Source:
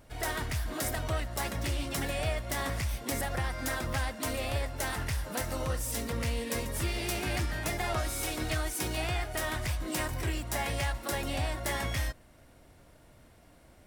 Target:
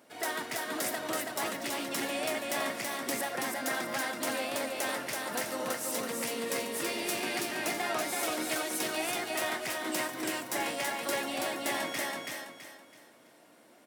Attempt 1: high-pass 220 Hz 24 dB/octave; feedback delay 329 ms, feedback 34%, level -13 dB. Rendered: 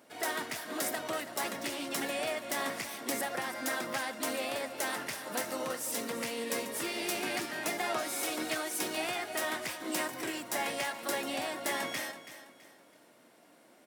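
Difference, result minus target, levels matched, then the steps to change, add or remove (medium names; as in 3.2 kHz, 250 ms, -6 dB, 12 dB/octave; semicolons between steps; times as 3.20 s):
echo-to-direct -10 dB
change: feedback delay 329 ms, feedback 34%, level -3 dB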